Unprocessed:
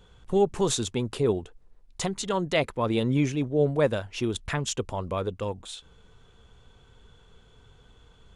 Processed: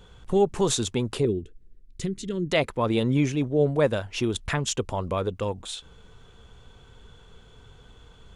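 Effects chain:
in parallel at −3 dB: downward compressor, threshold −33 dBFS, peak gain reduction 15 dB
0:01.25–0:02.50: on the sum: drawn EQ curve 370 Hz 0 dB, 820 Hz −29 dB, 1,800 Hz −10 dB

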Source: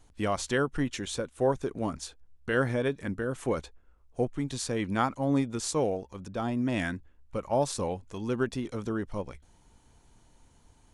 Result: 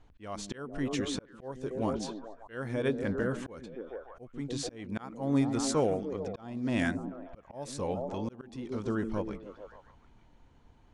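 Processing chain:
echo through a band-pass that steps 147 ms, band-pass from 210 Hz, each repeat 0.7 octaves, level −4.5 dB
low-pass that shuts in the quiet parts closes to 2,900 Hz, open at −22 dBFS
volume swells 477 ms

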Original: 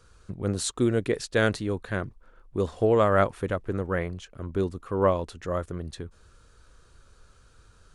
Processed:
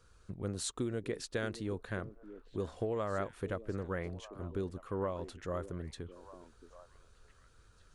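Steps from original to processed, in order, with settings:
downward compressor 6 to 1, threshold −25 dBFS, peak gain reduction 9.5 dB
echo through a band-pass that steps 622 ms, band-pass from 320 Hz, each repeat 1.4 octaves, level −10.5 dB
level −7 dB

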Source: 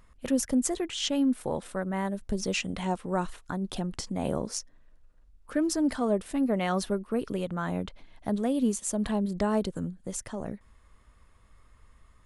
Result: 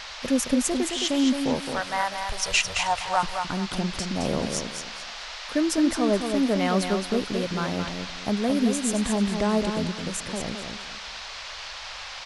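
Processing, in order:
0:01.72–0:03.23: drawn EQ curve 110 Hz 0 dB, 260 Hz −29 dB, 750 Hz +6 dB
noise in a band 570–5,200 Hz −42 dBFS
repeating echo 217 ms, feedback 28%, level −6 dB
level +3 dB

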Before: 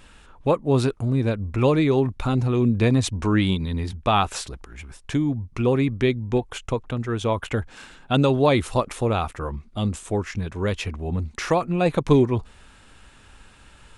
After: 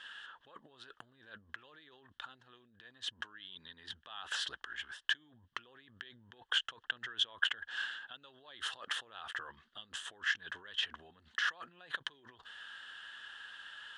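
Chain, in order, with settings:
brickwall limiter −13 dBFS, peak gain reduction 8.5 dB
compressor whose output falls as the input rises −33 dBFS, ratio −1
pair of resonant band-passes 2,300 Hz, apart 0.88 octaves
level +2.5 dB

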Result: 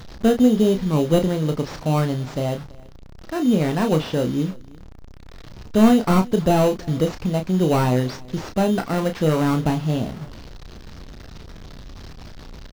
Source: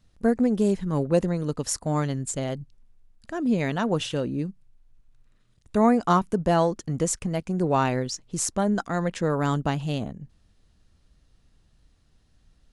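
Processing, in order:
linear delta modulator 32 kbit/s, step −37.5 dBFS
in parallel at −4 dB: decimation without filtering 13×
on the sum: double-tracking delay 32 ms −7 dB
single-tap delay 331 ms −24 dB
level +1 dB

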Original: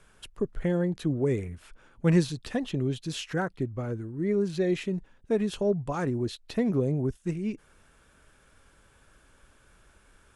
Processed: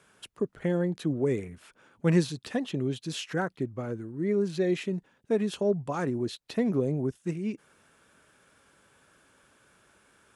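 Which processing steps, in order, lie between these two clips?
high-pass filter 140 Hz 12 dB per octave

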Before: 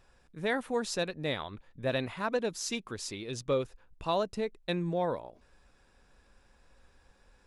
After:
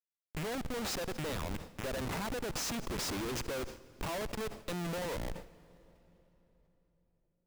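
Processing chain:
loose part that buzzes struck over −46 dBFS, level −39 dBFS
high-pass filter 160 Hz 24 dB per octave
downward compressor 4 to 1, threshold −35 dBFS, peak gain reduction 10 dB
comparator with hysteresis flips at −44.5 dBFS
on a send at −20 dB: convolution reverb RT60 3.9 s, pre-delay 107 ms
on the sum: level that may fall only so fast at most 120 dB per second
level +5.5 dB

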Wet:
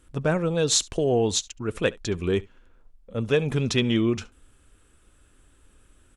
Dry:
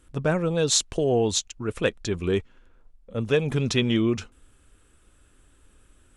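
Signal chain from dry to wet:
single-tap delay 70 ms −23.5 dB

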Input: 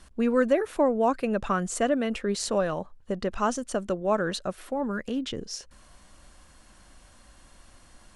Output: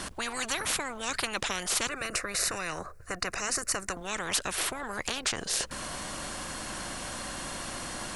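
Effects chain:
0:01.87–0:03.97: phaser with its sweep stopped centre 880 Hz, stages 6
every bin compressed towards the loudest bin 10 to 1

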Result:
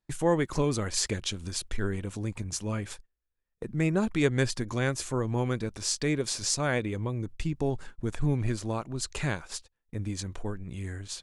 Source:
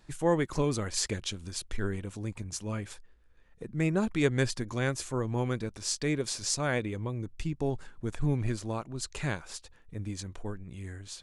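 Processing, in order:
in parallel at −0.5 dB: downward compressor 6 to 1, threshold −39 dBFS, peak gain reduction 17.5 dB
on the sum: noise gate −40 dBFS, range −30 dB

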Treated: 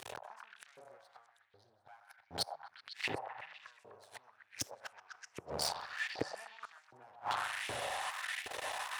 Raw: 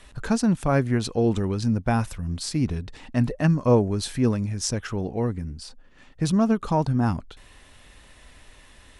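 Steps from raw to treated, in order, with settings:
parametric band 760 Hz +7 dB 0.43 octaves
spring reverb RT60 1.2 s, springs 40 ms, chirp 55 ms, DRR 6 dB
downward compressor 2.5 to 1, threshold −31 dBFS, peak gain reduction 13 dB
tuned comb filter 760 Hz, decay 0.22 s, harmonics all, mix 50%
gate with flip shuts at −30 dBFS, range −36 dB
0:00.98–0:02.77: phaser with its sweep stopped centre 1,700 Hz, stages 8
half-wave rectification
low shelf with overshoot 160 Hz +13.5 dB, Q 1.5
soft clipping −29.5 dBFS, distortion −15 dB
echo through a band-pass that steps 126 ms, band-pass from 770 Hz, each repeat 0.7 octaves, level −3 dB
auto-filter high-pass saw up 1.3 Hz 370–2,400 Hz
level +18 dB

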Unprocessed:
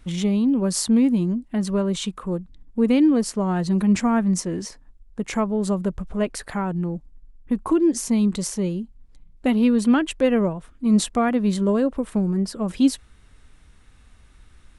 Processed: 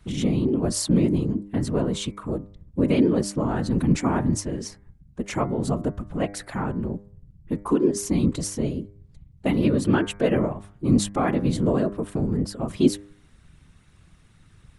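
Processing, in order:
random phases in short frames
hum removal 100.8 Hz, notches 23
level −2 dB

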